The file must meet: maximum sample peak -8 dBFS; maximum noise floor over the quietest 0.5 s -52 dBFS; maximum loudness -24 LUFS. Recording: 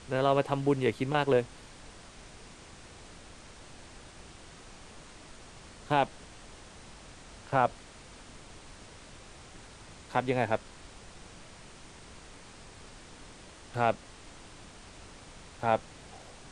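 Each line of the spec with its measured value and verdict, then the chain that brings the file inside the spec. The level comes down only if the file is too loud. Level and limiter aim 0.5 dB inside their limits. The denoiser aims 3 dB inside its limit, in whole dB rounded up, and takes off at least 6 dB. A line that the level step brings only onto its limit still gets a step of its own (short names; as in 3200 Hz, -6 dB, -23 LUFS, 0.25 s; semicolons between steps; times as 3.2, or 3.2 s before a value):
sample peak -10.5 dBFS: OK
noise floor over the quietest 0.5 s -50 dBFS: fail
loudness -30.0 LUFS: OK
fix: denoiser 6 dB, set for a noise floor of -50 dBFS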